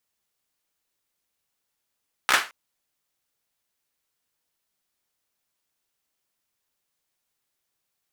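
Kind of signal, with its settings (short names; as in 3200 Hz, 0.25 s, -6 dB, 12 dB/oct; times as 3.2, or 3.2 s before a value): hand clap length 0.22 s, apart 15 ms, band 1500 Hz, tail 0.29 s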